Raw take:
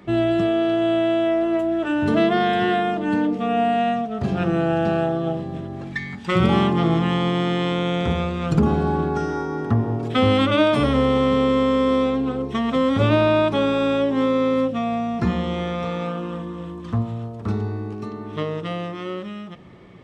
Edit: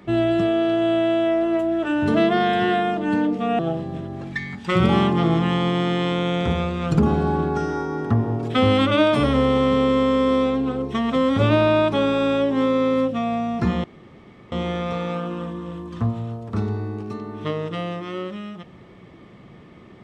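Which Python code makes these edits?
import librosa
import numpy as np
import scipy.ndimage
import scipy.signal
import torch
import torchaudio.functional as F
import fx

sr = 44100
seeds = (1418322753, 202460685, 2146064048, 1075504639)

y = fx.edit(x, sr, fx.cut(start_s=3.59, length_s=1.6),
    fx.insert_room_tone(at_s=15.44, length_s=0.68), tone=tone)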